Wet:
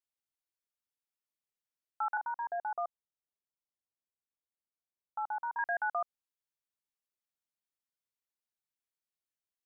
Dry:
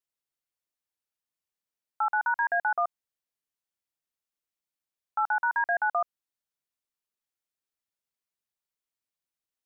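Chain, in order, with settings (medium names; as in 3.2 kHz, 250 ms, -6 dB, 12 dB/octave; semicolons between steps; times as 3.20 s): 2.17–5.59 s: low-pass 1.1 kHz 24 dB/octave; trim -6.5 dB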